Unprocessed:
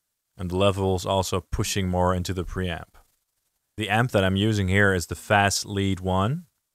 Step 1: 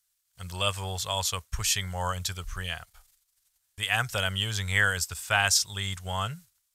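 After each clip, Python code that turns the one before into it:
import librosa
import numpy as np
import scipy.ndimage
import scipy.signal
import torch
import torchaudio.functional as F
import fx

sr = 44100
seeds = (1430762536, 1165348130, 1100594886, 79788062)

y = fx.tone_stack(x, sr, knobs='10-0-10')
y = y * librosa.db_to_amplitude(4.0)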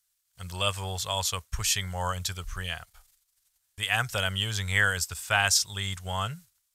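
y = x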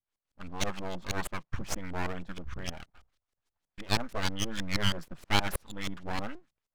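y = fx.filter_lfo_lowpass(x, sr, shape='saw_up', hz=6.3, low_hz=280.0, high_hz=4000.0, q=1.3)
y = np.abs(y)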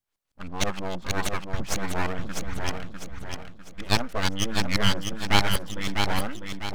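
y = fx.echo_feedback(x, sr, ms=650, feedback_pct=39, wet_db=-5.0)
y = y * librosa.db_to_amplitude(5.5)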